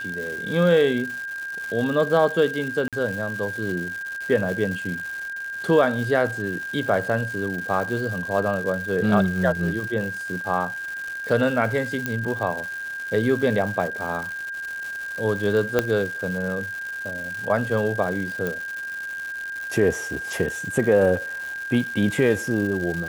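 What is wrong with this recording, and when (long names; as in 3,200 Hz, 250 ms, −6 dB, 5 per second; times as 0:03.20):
surface crackle 310 per second −30 dBFS
whistle 1,600 Hz −29 dBFS
0:02.88–0:02.93: drop-out 47 ms
0:12.06: click −10 dBFS
0:15.79: click −6 dBFS
0:18.47: click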